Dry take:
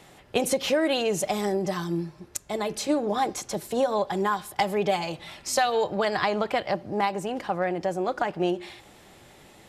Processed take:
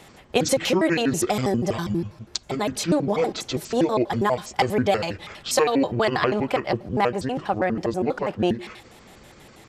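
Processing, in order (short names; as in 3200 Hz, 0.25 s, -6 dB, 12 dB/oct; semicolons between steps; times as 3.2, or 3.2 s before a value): trilling pitch shifter -8.5 st, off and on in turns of 81 ms; gain +4 dB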